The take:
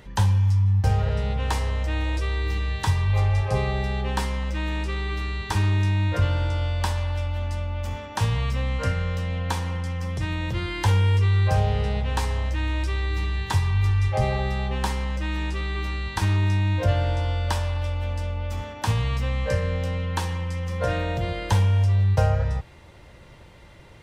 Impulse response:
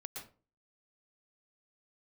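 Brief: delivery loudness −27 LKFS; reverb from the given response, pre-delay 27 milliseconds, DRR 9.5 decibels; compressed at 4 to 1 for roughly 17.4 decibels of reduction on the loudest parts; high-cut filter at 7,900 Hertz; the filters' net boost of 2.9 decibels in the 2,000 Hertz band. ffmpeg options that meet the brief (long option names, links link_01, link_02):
-filter_complex "[0:a]lowpass=7900,equalizer=frequency=2000:width_type=o:gain=3.5,acompressor=threshold=-38dB:ratio=4,asplit=2[link_01][link_02];[1:a]atrim=start_sample=2205,adelay=27[link_03];[link_02][link_03]afir=irnorm=-1:irlink=0,volume=-6.5dB[link_04];[link_01][link_04]amix=inputs=2:normalize=0,volume=12.5dB"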